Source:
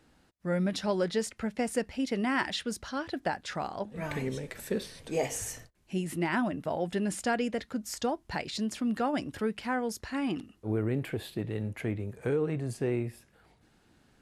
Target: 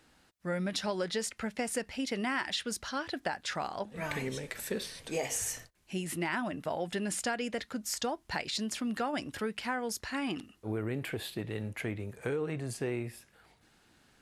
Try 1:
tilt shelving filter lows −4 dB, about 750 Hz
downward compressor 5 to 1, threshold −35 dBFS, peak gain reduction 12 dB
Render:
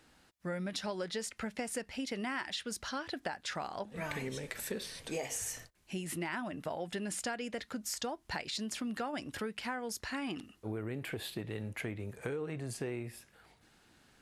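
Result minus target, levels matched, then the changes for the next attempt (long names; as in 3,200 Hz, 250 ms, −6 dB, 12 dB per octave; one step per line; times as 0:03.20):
downward compressor: peak gain reduction +5 dB
change: downward compressor 5 to 1, threshold −29 dBFS, peak gain reduction 7 dB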